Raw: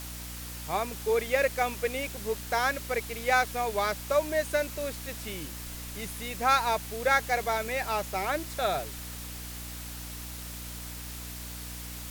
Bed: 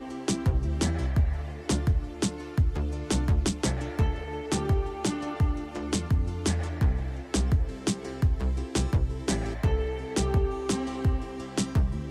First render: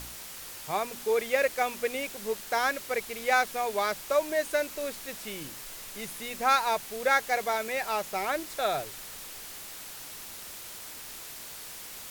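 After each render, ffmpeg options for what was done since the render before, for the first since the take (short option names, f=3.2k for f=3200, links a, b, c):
-af "bandreject=f=60:t=h:w=4,bandreject=f=120:t=h:w=4,bandreject=f=180:t=h:w=4,bandreject=f=240:t=h:w=4,bandreject=f=300:t=h:w=4"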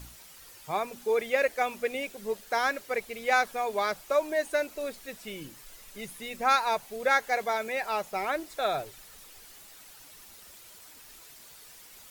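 -af "afftdn=nr=10:nf=-43"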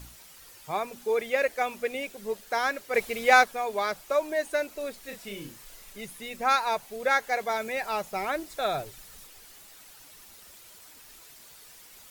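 -filter_complex "[0:a]asplit=3[a][b][c];[a]afade=t=out:st=2.93:d=0.02[d];[b]acontrast=66,afade=t=in:st=2.93:d=0.02,afade=t=out:st=3.43:d=0.02[e];[c]afade=t=in:st=3.43:d=0.02[f];[d][e][f]amix=inputs=3:normalize=0,asettb=1/sr,asplit=3[g][h][i];[g]atrim=end=5.004[j];[h]atrim=start=5:end=5.93,asetpts=PTS-STARTPTS,afade=t=in:d=0.004:c=qsin,afade=t=out:st=0.926:d=0.004:c=qsin,asplit=2[k][l];[l]adelay=35,volume=-5dB[m];[k][m]amix=inputs=2:normalize=0,atrim=end_sample=41013[n];[i]atrim=start=5.926[o];[j][n]acrossfade=d=0.004:c1=hsin:c2=qsin[p];[p][o]acrossfade=d=0.004:c1=qsin:c2=hsin,asettb=1/sr,asplit=3[q][r][s];[q]atrim=end=7.504[t];[r]atrim=start=7.5:end=9.27,asetpts=PTS-STARTPTS,afade=t=in:d=0.004:c=qsin,afade=t=out:st=1.766:d=0.004:c=qsin,bass=f=250:g=5,treble=f=4k:g=2[u];[s]atrim=start=9.266[v];[t][u]acrossfade=d=0.004:c1=hsin:c2=qsin[w];[w][v]acrossfade=d=0.004:c1=qsin:c2=hsin"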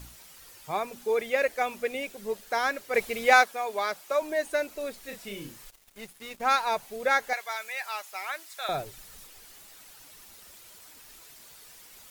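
-filter_complex "[0:a]asettb=1/sr,asplit=3[a][b][c];[a]atrim=end=3.334[d];[b]atrim=start=3.33:end=4.22,asetpts=PTS-STARTPTS,afade=t=in:d=0.004:c=qsin,afade=t=out:st=0.886:d=0.004:c=qsin,highpass=f=370:p=1[e];[c]atrim=start=4.216[f];[d][e]acrossfade=d=0.004:c1=hsin:c2=qsin[g];[g][f]acrossfade=d=0.004:c1=qsin:c2=hsin,asettb=1/sr,asplit=3[h][i][j];[h]atrim=end=5.704[k];[i]atrim=start=5.7:end=6.64,asetpts=PTS-STARTPTS,afade=t=in:d=0.004:c=qsin,afade=t=out:st=0.936:d=0.004:c=qsin,aeval=exprs='sgn(val(0))*max(abs(val(0))-0.00531,0)':c=same[l];[j]atrim=start=6.636[m];[k][l]acrossfade=d=0.004:c1=hsin:c2=qsin[n];[n][m]acrossfade=d=0.004:c1=qsin:c2=hsin,asettb=1/sr,asplit=3[o][p][q];[o]atrim=end=7.334[r];[p]atrim=start=7.33:end=8.69,asetpts=PTS-STARTPTS,afade=t=in:d=0.004:c=qsin,afade=t=out:st=1.356:d=0.004:c=qsin,highpass=1.2k[s];[q]atrim=start=8.686[t];[r][s]acrossfade=d=0.004:c1=hsin:c2=qsin[u];[u][t]acrossfade=d=0.004:c1=qsin:c2=hsin"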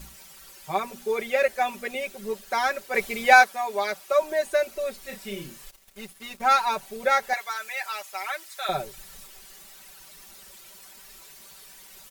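-af "aecho=1:1:5.2:0.93"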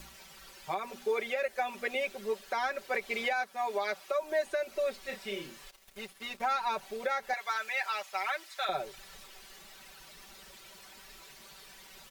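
-filter_complex "[0:a]acrossover=split=300|5400[a][b][c];[a]acompressor=threshold=-55dB:ratio=4[d];[b]acompressor=threshold=-27dB:ratio=4[e];[c]acompressor=threshold=-59dB:ratio=4[f];[d][e][f]amix=inputs=3:normalize=0,alimiter=limit=-21.5dB:level=0:latency=1:release=153"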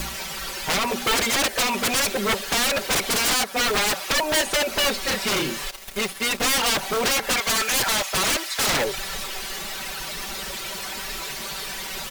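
-filter_complex "[0:a]asplit=2[a][b];[b]acrusher=bits=5:mix=0:aa=0.000001,volume=-5dB[c];[a][c]amix=inputs=2:normalize=0,aeval=exprs='0.141*sin(PI/2*7.08*val(0)/0.141)':c=same"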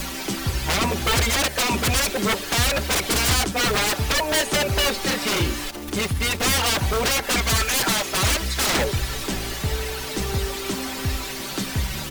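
-filter_complex "[1:a]volume=-1dB[a];[0:a][a]amix=inputs=2:normalize=0"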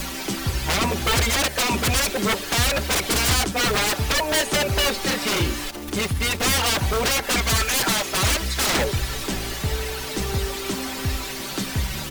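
-af anull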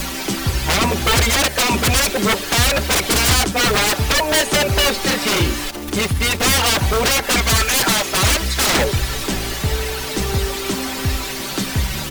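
-af "volume=5dB"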